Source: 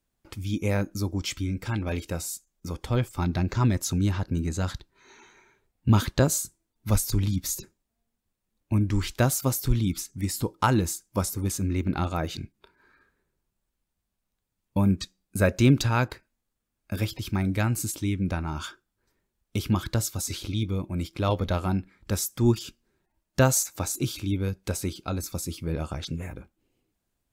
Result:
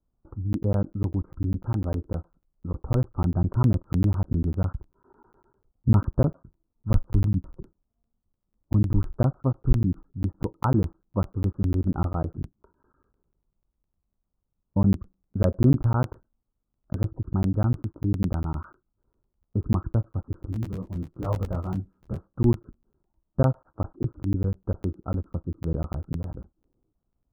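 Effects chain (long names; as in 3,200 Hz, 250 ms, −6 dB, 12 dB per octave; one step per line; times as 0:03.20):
harmonic generator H 5 −33 dB, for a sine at −7.5 dBFS
Butterworth low-pass 1,400 Hz 72 dB per octave
spectral tilt −2 dB per octave
regular buffer underruns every 0.10 s, samples 512, zero, from 0:00.53
0:20.46–0:22.24: micro pitch shift up and down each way 37 cents
level −4 dB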